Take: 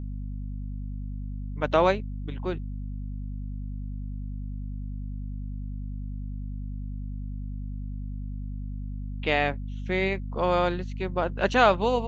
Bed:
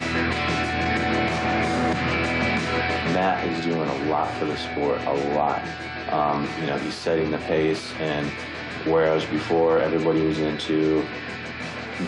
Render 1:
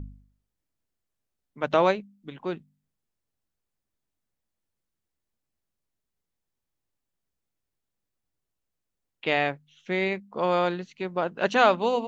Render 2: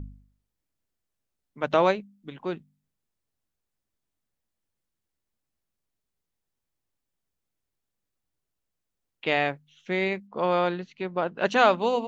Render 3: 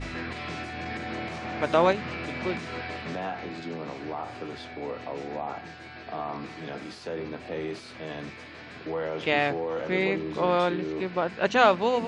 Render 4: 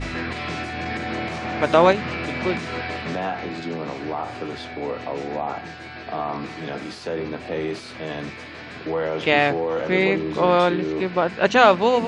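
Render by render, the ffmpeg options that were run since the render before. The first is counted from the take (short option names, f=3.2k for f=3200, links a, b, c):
-af "bandreject=f=50:t=h:w=4,bandreject=f=100:t=h:w=4,bandreject=f=150:t=h:w=4,bandreject=f=200:t=h:w=4,bandreject=f=250:t=h:w=4"
-filter_complex "[0:a]asettb=1/sr,asplit=3[a][b][c];[a]atrim=end=10.274[d];[b]atrim=start=10.27:end=11.45,asetpts=PTS-STARTPTS,afade=t=in:d=0.004:c=qsin,afade=t=out:st=1.176:d=0.004:c=qsin,lowpass=4.8k[e];[c]atrim=start=11.446[f];[d][e]acrossfade=d=0.004:c1=hsin:c2=qsin[g];[g][f]acrossfade=d=0.004:c1=qsin:c2=hsin"
-filter_complex "[1:a]volume=-11.5dB[a];[0:a][a]amix=inputs=2:normalize=0"
-af "volume=6.5dB,alimiter=limit=-2dB:level=0:latency=1"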